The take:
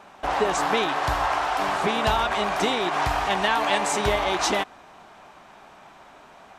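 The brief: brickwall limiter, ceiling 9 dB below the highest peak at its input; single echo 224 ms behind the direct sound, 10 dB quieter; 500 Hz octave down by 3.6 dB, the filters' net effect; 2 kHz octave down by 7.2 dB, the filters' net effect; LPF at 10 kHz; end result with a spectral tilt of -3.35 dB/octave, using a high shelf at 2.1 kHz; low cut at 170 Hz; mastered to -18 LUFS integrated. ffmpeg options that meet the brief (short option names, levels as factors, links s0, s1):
-af "highpass=170,lowpass=10000,equalizer=f=500:t=o:g=-4,equalizer=f=2000:t=o:g=-6,highshelf=f=2100:g=-5.5,alimiter=limit=0.0794:level=0:latency=1,aecho=1:1:224:0.316,volume=4.22"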